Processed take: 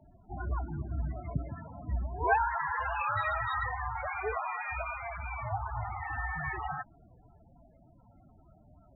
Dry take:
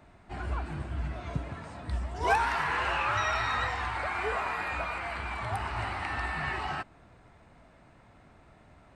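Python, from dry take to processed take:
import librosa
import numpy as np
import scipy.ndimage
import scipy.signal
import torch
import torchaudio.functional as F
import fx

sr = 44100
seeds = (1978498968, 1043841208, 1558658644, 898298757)

y = fx.cvsd(x, sr, bps=64000)
y = fx.spec_topn(y, sr, count=16)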